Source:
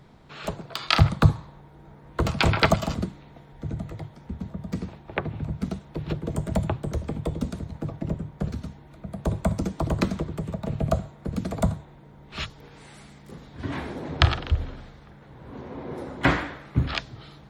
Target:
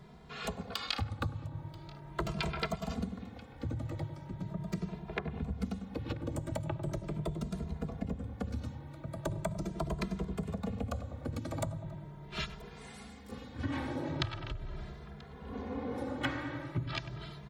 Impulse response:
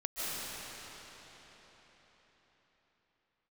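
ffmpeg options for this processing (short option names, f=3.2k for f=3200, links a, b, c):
-filter_complex "[0:a]asplit=2[a][b];[b]adelay=98,lowpass=f=1k:p=1,volume=-10.5dB,asplit=2[c][d];[d]adelay=98,lowpass=f=1k:p=1,volume=0.52,asplit=2[e][f];[f]adelay=98,lowpass=f=1k:p=1,volume=0.52,asplit=2[g][h];[h]adelay=98,lowpass=f=1k:p=1,volume=0.52,asplit=2[i][j];[j]adelay=98,lowpass=f=1k:p=1,volume=0.52,asplit=2[k][l];[l]adelay=98,lowpass=f=1k:p=1,volume=0.52[m];[c][e][g][i][k][m]amix=inputs=6:normalize=0[n];[a][n]amix=inputs=2:normalize=0,acompressor=threshold=-30dB:ratio=8,asplit=2[o][p];[p]aecho=0:1:985:0.075[q];[o][q]amix=inputs=2:normalize=0,asplit=2[r][s];[s]adelay=2.5,afreqshift=0.4[t];[r][t]amix=inputs=2:normalize=1,volume=1dB"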